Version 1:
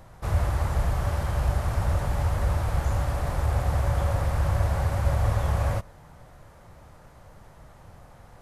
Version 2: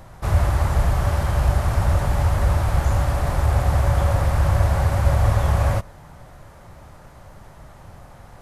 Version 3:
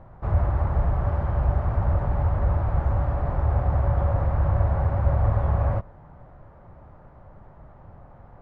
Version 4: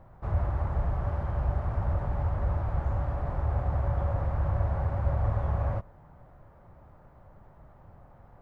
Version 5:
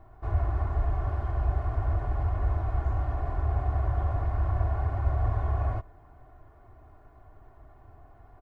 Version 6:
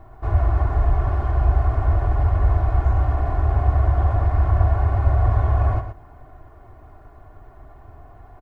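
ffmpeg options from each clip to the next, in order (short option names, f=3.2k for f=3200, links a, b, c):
-af "bandreject=f=480:w=16,volume=6dB"
-af "lowpass=1.2k,volume=-3.5dB"
-af "aemphasis=mode=production:type=50kf,volume=-6dB"
-af "aecho=1:1:2.8:0.94,volume=-2.5dB"
-af "aecho=1:1:117:0.355,volume=8dB"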